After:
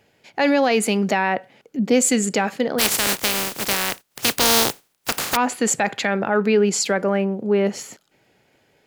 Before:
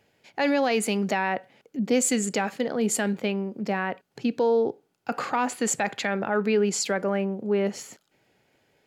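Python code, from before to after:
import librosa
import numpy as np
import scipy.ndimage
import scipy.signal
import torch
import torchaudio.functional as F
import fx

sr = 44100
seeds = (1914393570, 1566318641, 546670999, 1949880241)

y = fx.spec_flatten(x, sr, power=0.2, at=(2.78, 5.35), fade=0.02)
y = y * librosa.db_to_amplitude(5.5)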